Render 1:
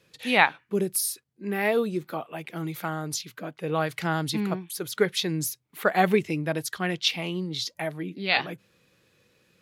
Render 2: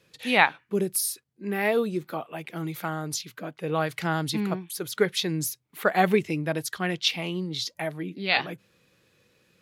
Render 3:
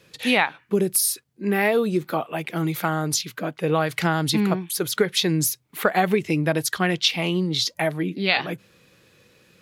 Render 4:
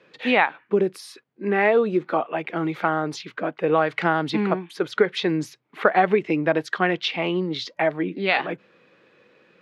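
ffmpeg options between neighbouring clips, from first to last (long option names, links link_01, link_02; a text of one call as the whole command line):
ffmpeg -i in.wav -af anull out.wav
ffmpeg -i in.wav -af "acompressor=threshold=-24dB:ratio=6,volume=8dB" out.wav
ffmpeg -i in.wav -af "highpass=270,lowpass=2200,volume=3dB" out.wav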